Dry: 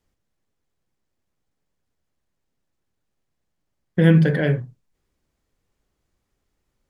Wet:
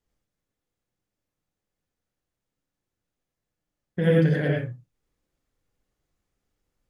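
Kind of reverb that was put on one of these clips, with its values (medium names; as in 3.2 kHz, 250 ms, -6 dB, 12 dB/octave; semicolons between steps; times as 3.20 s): gated-style reverb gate 130 ms rising, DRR -2 dB; trim -8 dB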